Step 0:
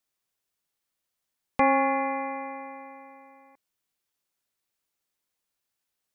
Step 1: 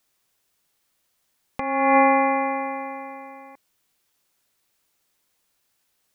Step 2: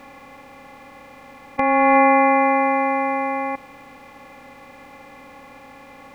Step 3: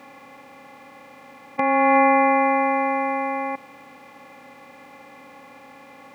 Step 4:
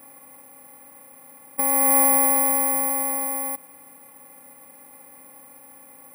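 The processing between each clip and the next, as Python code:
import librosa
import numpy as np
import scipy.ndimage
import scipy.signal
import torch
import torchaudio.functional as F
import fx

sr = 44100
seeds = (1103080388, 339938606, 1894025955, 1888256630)

y1 = fx.over_compress(x, sr, threshold_db=-26.0, ratio=-0.5)
y1 = y1 * librosa.db_to_amplitude(9.0)
y2 = fx.bin_compress(y1, sr, power=0.4)
y2 = y2 * librosa.db_to_amplitude(1.5)
y3 = scipy.signal.sosfilt(scipy.signal.butter(2, 130.0, 'highpass', fs=sr, output='sos'), y2)
y3 = y3 * librosa.db_to_amplitude(-2.0)
y4 = fx.high_shelf(y3, sr, hz=2400.0, db=-8.0)
y4 = (np.kron(y4[::4], np.eye(4)[0]) * 4)[:len(y4)]
y4 = y4 * librosa.db_to_amplitude(-6.5)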